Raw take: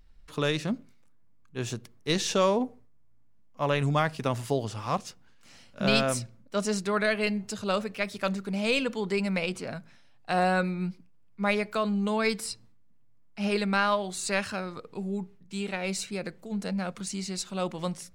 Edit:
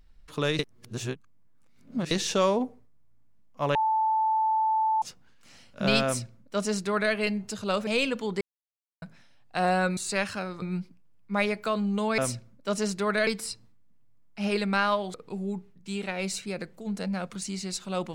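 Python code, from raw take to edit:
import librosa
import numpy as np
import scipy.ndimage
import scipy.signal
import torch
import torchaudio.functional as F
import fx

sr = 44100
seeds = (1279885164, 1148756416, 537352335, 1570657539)

y = fx.edit(x, sr, fx.reverse_span(start_s=0.59, length_s=1.52),
    fx.bleep(start_s=3.75, length_s=1.27, hz=878.0, db=-21.5),
    fx.duplicate(start_s=6.05, length_s=1.09, to_s=12.27),
    fx.cut(start_s=7.87, length_s=0.74),
    fx.silence(start_s=9.15, length_s=0.61),
    fx.move(start_s=14.14, length_s=0.65, to_s=10.71), tone=tone)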